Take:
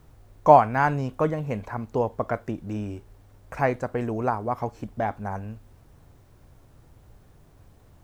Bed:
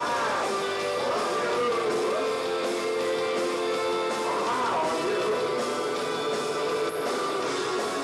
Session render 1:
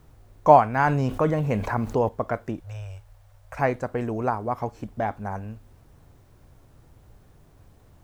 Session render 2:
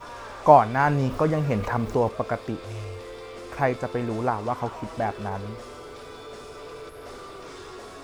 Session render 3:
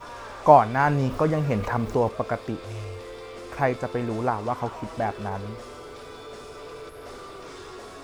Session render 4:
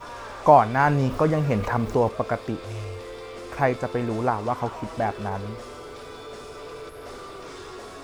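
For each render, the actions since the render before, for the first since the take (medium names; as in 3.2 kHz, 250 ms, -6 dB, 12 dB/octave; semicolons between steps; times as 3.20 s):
0.79–2.09 s: level flattener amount 50%; 2.60–3.58 s: Chebyshev band-stop 120–550 Hz, order 3
add bed -13 dB
no audible change
trim +1.5 dB; peak limiter -3 dBFS, peak gain reduction 3 dB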